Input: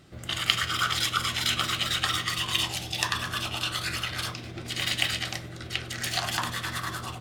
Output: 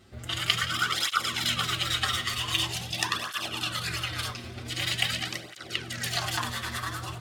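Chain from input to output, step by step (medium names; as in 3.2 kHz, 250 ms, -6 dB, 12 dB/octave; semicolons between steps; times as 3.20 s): thinning echo 170 ms, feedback 62%, level -19 dB; cancelling through-zero flanger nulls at 0.45 Hz, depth 6.9 ms; trim +2 dB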